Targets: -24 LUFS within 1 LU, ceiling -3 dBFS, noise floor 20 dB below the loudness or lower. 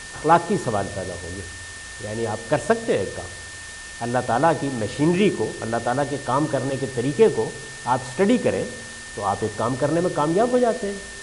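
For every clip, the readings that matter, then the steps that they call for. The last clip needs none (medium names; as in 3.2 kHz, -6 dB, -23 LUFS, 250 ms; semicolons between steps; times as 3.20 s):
steady tone 1.8 kHz; tone level -38 dBFS; noise floor -37 dBFS; noise floor target -43 dBFS; loudness -22.5 LUFS; peak level -2.5 dBFS; loudness target -24.0 LUFS
-> band-stop 1.8 kHz, Q 30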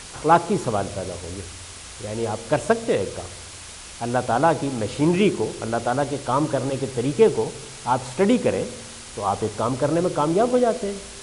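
steady tone not found; noise floor -39 dBFS; noise floor target -43 dBFS
-> noise reduction 6 dB, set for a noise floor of -39 dBFS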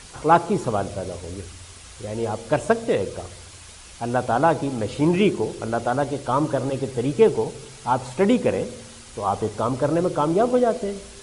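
noise floor -43 dBFS; loudness -23.0 LUFS; peak level -3.0 dBFS; loudness target -24.0 LUFS
-> trim -1 dB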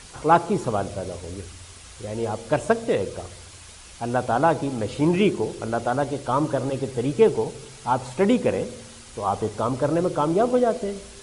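loudness -24.0 LUFS; peak level -4.0 dBFS; noise floor -44 dBFS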